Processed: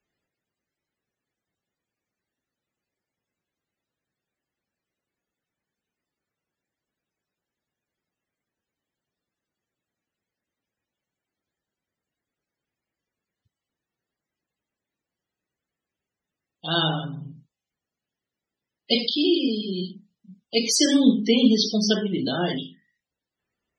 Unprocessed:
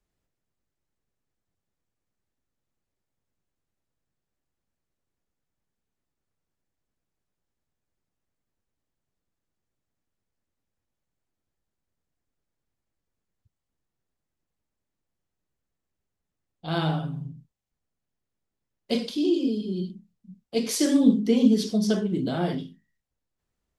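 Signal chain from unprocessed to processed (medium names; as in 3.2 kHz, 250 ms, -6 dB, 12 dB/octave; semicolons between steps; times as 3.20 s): loudest bins only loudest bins 64; frequency weighting D; trim +2.5 dB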